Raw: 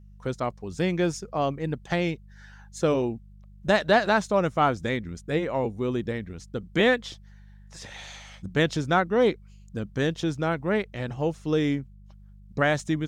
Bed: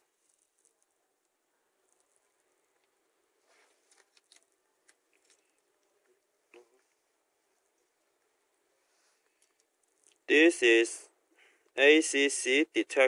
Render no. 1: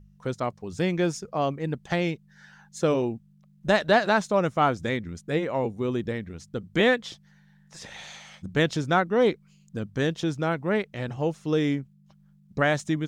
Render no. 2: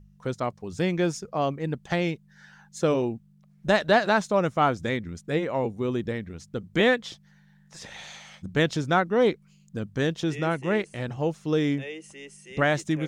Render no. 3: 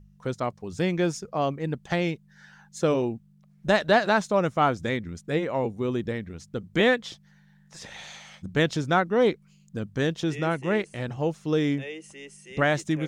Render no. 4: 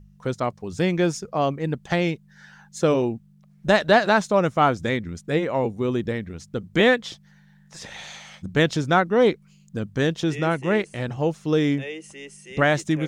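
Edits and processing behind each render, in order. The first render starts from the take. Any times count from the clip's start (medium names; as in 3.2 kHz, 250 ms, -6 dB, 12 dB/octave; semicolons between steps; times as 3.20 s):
de-hum 50 Hz, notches 2
add bed -17 dB
no audible change
trim +3.5 dB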